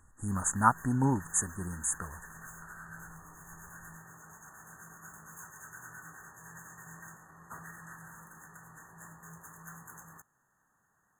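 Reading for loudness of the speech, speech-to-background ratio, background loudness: -30.0 LUFS, 19.5 dB, -49.5 LUFS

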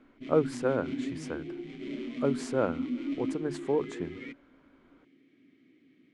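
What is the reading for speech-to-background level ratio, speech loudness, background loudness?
5.0 dB, -32.5 LUFS, -37.5 LUFS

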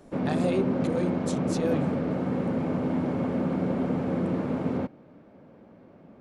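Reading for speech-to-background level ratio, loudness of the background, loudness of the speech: -5.0 dB, -28.0 LUFS, -33.0 LUFS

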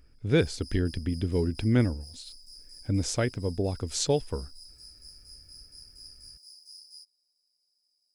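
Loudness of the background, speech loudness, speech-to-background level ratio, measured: -47.5 LUFS, -28.5 LUFS, 19.0 dB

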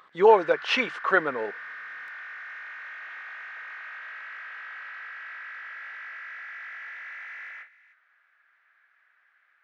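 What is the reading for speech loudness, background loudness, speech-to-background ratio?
-22.5 LUFS, -38.5 LUFS, 16.0 dB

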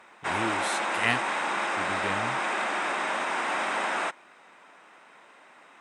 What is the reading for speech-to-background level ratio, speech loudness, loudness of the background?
-5.0 dB, -33.0 LUFS, -28.0 LUFS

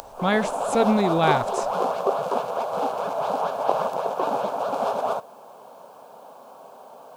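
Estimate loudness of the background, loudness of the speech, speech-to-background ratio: -26.0 LUFS, -23.0 LUFS, 3.0 dB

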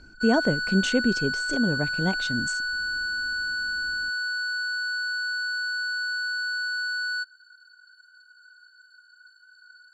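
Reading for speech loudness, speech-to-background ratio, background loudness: -26.5 LUFS, 1.0 dB, -27.5 LUFS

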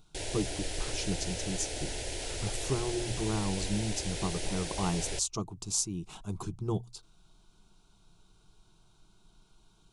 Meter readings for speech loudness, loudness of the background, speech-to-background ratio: -35.0 LUFS, -37.0 LUFS, 2.0 dB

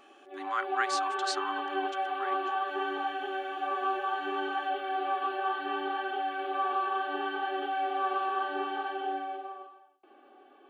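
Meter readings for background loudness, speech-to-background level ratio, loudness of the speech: -32.5 LUFS, -4.0 dB, -36.5 LUFS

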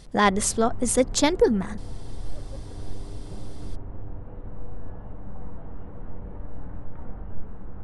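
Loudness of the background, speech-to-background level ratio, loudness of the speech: -41.0 LUFS, 18.5 dB, -22.5 LUFS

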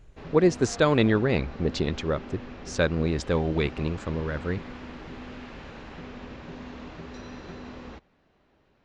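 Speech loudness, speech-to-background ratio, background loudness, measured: -26.0 LUFS, 15.5 dB, -41.5 LUFS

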